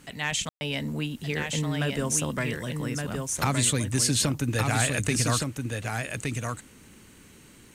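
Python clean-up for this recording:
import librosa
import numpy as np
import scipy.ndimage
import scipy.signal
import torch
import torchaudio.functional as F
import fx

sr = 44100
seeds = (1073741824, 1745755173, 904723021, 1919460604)

y = fx.fix_ambience(x, sr, seeds[0], print_start_s=7.06, print_end_s=7.56, start_s=0.49, end_s=0.61)
y = fx.fix_echo_inverse(y, sr, delay_ms=1168, level_db=-4.5)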